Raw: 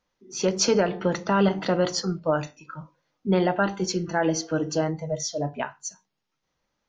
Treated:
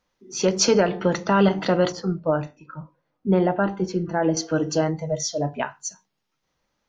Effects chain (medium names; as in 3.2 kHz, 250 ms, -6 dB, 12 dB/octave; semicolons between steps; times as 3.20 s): 1.92–4.37 s: low-pass 1 kHz 6 dB/octave; trim +3 dB